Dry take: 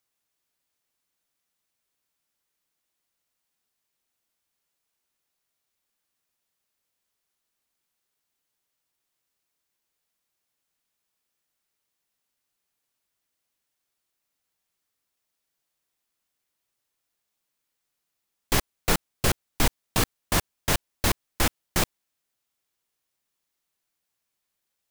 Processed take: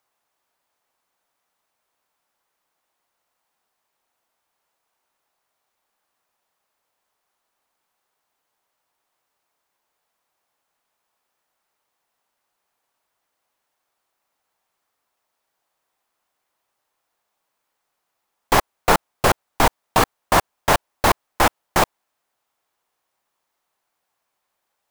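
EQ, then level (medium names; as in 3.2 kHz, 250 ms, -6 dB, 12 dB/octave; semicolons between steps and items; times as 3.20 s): peaking EQ 860 Hz +14 dB 2.1 oct; +1.0 dB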